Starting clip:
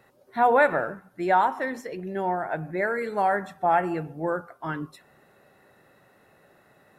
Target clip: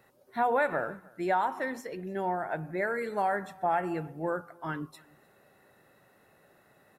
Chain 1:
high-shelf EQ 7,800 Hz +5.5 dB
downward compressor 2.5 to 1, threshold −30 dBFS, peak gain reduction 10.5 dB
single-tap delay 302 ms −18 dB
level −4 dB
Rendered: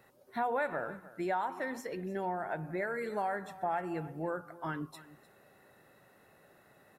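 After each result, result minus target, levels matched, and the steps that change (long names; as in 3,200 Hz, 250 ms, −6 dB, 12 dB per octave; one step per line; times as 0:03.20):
downward compressor: peak gain reduction +6 dB; echo-to-direct +8 dB
change: downward compressor 2.5 to 1, threshold −20 dBFS, peak gain reduction 4.5 dB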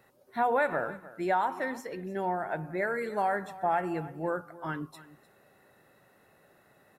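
echo-to-direct +8 dB
change: single-tap delay 302 ms −26 dB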